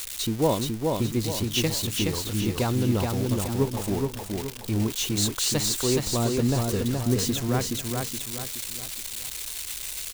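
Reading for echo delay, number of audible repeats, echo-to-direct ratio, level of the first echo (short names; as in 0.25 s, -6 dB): 0.422 s, 4, -2.5 dB, -3.5 dB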